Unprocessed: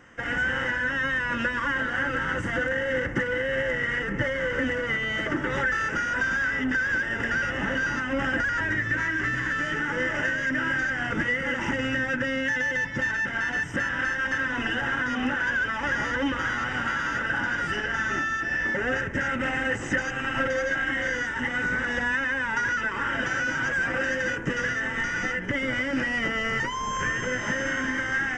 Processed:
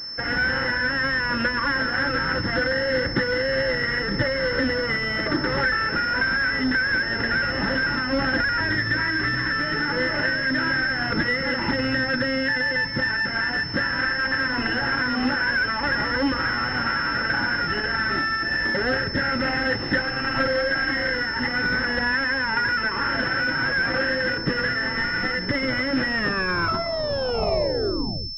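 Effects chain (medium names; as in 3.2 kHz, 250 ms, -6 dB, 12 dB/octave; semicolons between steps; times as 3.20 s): tape stop on the ending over 2.31 s; class-D stage that switches slowly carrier 5.3 kHz; trim +4 dB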